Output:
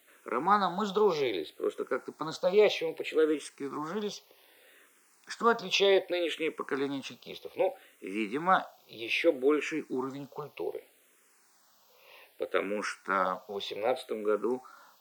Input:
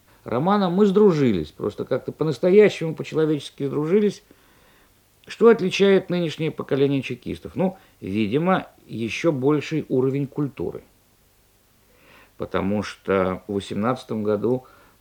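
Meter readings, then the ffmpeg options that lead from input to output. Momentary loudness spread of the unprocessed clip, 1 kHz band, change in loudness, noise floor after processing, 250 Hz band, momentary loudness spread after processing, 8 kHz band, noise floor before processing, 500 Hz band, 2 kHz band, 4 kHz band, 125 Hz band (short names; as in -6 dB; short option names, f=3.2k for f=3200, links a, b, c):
12 LU, -2.5 dB, -8.5 dB, -65 dBFS, -13.5 dB, 13 LU, -4.0 dB, -59 dBFS, -9.0 dB, -3.5 dB, -2.0 dB, -21.0 dB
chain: -filter_complex "[0:a]highpass=480,asplit=2[a][b];[b]afreqshift=-0.64[c];[a][c]amix=inputs=2:normalize=1"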